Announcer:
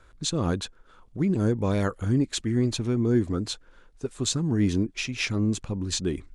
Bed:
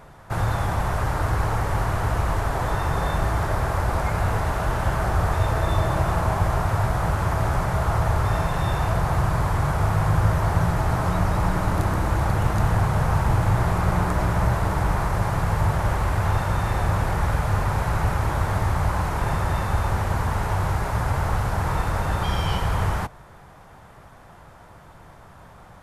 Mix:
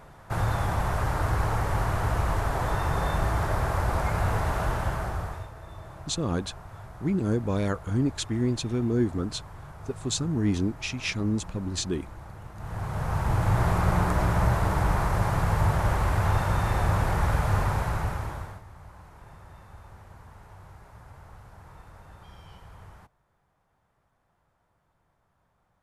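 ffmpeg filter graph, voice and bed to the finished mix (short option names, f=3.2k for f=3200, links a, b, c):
-filter_complex "[0:a]adelay=5850,volume=-2dB[a];[1:a]volume=16.5dB,afade=t=out:st=4.63:d=0.87:silence=0.11885,afade=t=in:st=12.56:d=1.1:silence=0.105925,afade=t=out:st=17.6:d=1.02:silence=0.0707946[b];[a][b]amix=inputs=2:normalize=0"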